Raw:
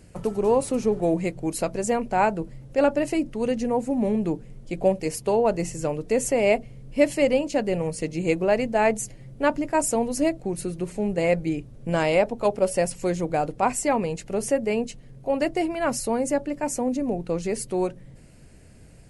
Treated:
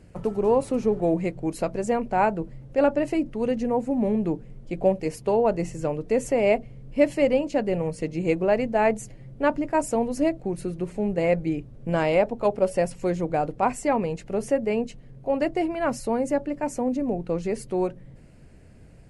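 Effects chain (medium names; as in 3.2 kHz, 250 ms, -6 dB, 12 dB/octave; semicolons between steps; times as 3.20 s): treble shelf 4.1 kHz -11.5 dB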